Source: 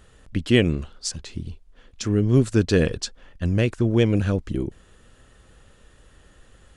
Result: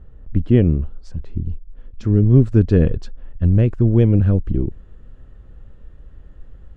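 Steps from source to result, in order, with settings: LPF 1300 Hz 6 dB/oct, from 1.49 s 3000 Hz; tilt -3.5 dB/oct; gain -3 dB

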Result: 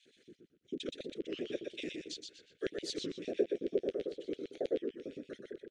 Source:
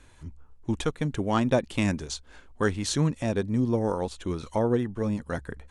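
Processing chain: 2.64–4.74 bell 750 Hz +8 dB 1.9 oct; compressor 1.5:1, threshold -46 dBFS, peak gain reduction 11 dB; transient shaper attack +1 dB, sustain -8 dB; dispersion lows, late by 51 ms, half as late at 330 Hz; whisperiser; LFO high-pass square 9 Hz 400–3300 Hz; Butterworth band-stop 950 Hz, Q 0.67; air absorption 91 m; feedback echo 0.123 s, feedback 26%, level -4.5 dB; record warp 33 1/3 rpm, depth 160 cents; gain -3.5 dB

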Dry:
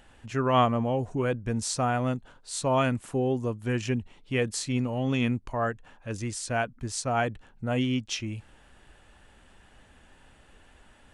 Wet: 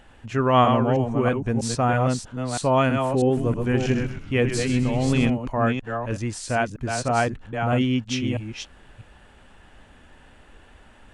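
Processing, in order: reverse delay 0.322 s, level -5.5 dB; high shelf 4600 Hz -7 dB; 3.24–5.3 frequency-shifting echo 0.128 s, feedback 41%, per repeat -110 Hz, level -9 dB; gain +5 dB

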